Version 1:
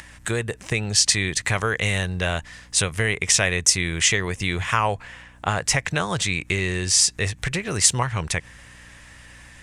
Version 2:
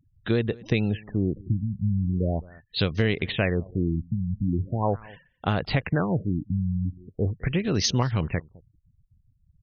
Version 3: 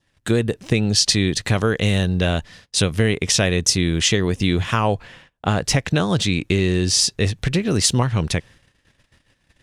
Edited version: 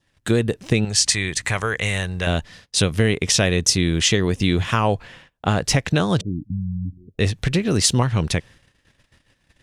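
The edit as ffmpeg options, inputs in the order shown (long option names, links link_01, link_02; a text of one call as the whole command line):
ffmpeg -i take0.wav -i take1.wav -i take2.wav -filter_complex "[2:a]asplit=3[link_01][link_02][link_03];[link_01]atrim=end=0.852[link_04];[0:a]atrim=start=0.848:end=2.272[link_05];[link_02]atrim=start=2.268:end=6.212[link_06];[1:a]atrim=start=6.208:end=7.192[link_07];[link_03]atrim=start=7.188[link_08];[link_04][link_05]acrossfade=duration=0.004:curve1=hsin:curve2=hsin[link_09];[link_09][link_06]acrossfade=duration=0.004:curve1=hsin:curve2=hsin[link_10];[link_10][link_07]acrossfade=duration=0.004:curve1=hsin:curve2=hsin[link_11];[link_11][link_08]acrossfade=duration=0.004:curve1=hsin:curve2=hsin" out.wav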